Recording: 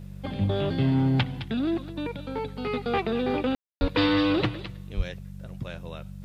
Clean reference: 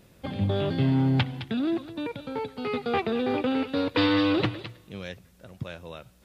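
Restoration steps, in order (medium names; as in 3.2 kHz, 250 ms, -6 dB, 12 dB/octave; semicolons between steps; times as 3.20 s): de-hum 47.9 Hz, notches 4; de-plosive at 3.80/4.96 s; room tone fill 3.55–3.81 s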